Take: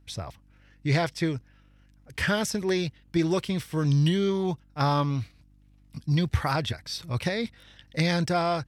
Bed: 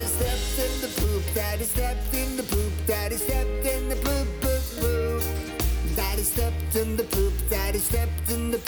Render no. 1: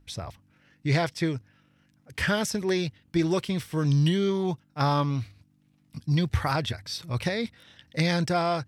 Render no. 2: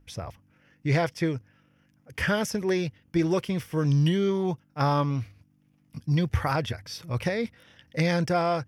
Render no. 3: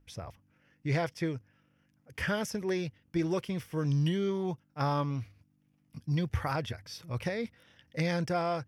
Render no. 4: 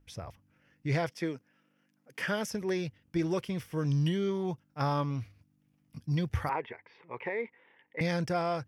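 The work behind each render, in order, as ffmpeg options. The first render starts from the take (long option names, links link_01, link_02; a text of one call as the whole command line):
ffmpeg -i in.wav -af "bandreject=frequency=50:width_type=h:width=4,bandreject=frequency=100:width_type=h:width=4" out.wav
ffmpeg -i in.wav -af "equalizer=frequency=500:width_type=o:width=0.33:gain=4,equalizer=frequency=4000:width_type=o:width=0.33:gain=-11,equalizer=frequency=8000:width_type=o:width=0.33:gain=-7" out.wav
ffmpeg -i in.wav -af "volume=-6dB" out.wav
ffmpeg -i in.wav -filter_complex "[0:a]asettb=1/sr,asplit=3[link_01][link_02][link_03];[link_01]atrim=end=1.104[link_04];[link_02]atrim=start=1.1:end=2.5,asetpts=PTS-STARTPTS,afade=type=in:duration=0.004:curve=qsin,afade=type=out:start_time=1.396:duration=0.004:curve=qsin,highpass=frequency=180:width=0.5412,highpass=frequency=180:width=1.3066[link_05];[link_03]atrim=start=2.496[link_06];[link_04][link_05]acrossfade=duration=0.004:curve1=hsin:curve2=qsin[link_07];[link_07][link_06]acrossfade=duration=0.004:curve1=qsin:curve2=hsin,asettb=1/sr,asplit=3[link_08][link_09][link_10];[link_08]atrim=end=6.494[link_11];[link_09]atrim=start=6.49:end=8.01,asetpts=PTS-STARTPTS,afade=type=in:duration=0.004:curve=qsin,afade=type=out:start_time=1.516:duration=0.004:curve=qsin,highpass=380,equalizer=frequency=410:width_type=q:width=4:gain=8,equalizer=frequency=620:width_type=q:width=4:gain=-6,equalizer=frequency=920:width_type=q:width=4:gain=9,equalizer=frequency=1400:width_type=q:width=4:gain=-8,equalizer=frequency=2100:width_type=q:width=4:gain=7,lowpass=frequency=2400:width=0.5412,lowpass=frequency=2400:width=1.3066[link_12];[link_10]atrim=start=8.006[link_13];[link_11][link_12]acrossfade=duration=0.004:curve1=hsin:curve2=qsin[link_14];[link_14][link_13]acrossfade=duration=0.004:curve1=qsin:curve2=hsin" out.wav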